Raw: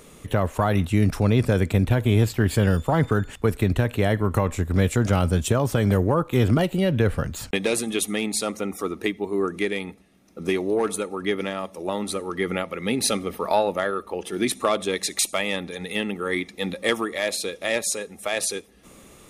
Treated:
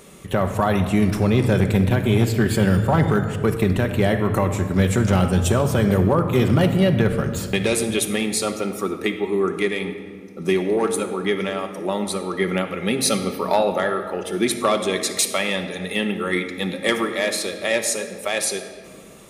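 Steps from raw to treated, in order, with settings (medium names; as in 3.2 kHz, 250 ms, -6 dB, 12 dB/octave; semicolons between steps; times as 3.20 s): high-pass 63 Hz 6 dB/octave; simulated room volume 2700 m³, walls mixed, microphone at 1.1 m; hard clipper -11 dBFS, distortion -26 dB; trim +2 dB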